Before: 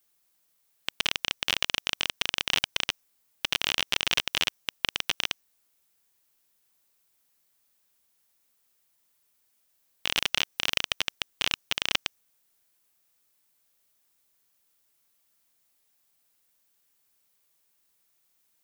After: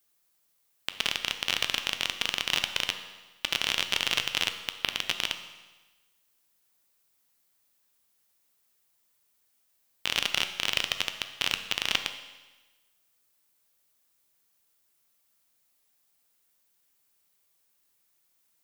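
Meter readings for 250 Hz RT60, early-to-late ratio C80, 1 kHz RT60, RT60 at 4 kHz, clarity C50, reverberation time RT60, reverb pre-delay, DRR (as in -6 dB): 1.2 s, 11.5 dB, 1.2 s, 1.2 s, 10.0 dB, 1.2 s, 11 ms, 7.5 dB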